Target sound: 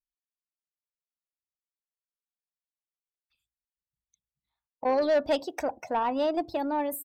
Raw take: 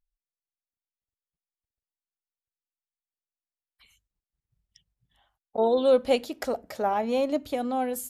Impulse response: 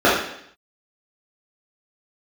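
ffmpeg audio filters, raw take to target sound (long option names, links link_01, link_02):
-af "afftdn=noise_reduction=20:noise_floor=-44,asoftclip=type=tanh:threshold=-18.5dB,asetrate=50715,aresample=44100"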